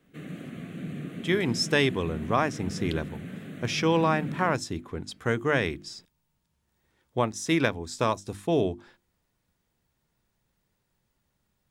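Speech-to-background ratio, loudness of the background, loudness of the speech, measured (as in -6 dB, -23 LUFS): 10.0 dB, -37.5 LUFS, -27.5 LUFS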